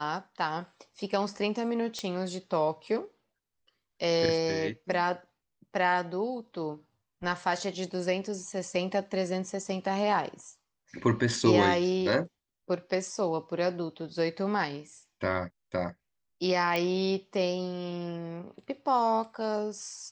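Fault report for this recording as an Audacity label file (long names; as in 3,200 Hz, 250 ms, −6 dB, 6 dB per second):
1.990000	1.990000	click −20 dBFS
16.760000	16.760000	click −15 dBFS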